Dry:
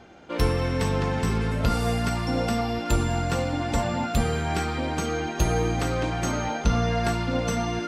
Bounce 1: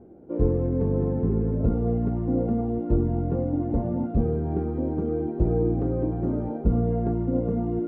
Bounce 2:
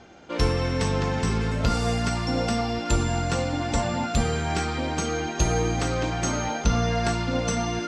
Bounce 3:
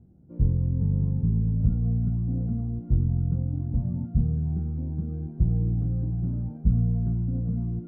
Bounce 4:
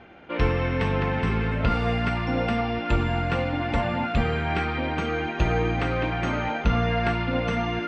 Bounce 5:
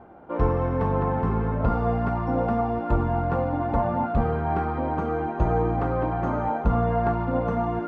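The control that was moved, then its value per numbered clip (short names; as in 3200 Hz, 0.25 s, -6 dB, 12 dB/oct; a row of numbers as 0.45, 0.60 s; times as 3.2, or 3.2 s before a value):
synth low-pass, frequency: 390, 6800, 150, 2500, 1000 Hz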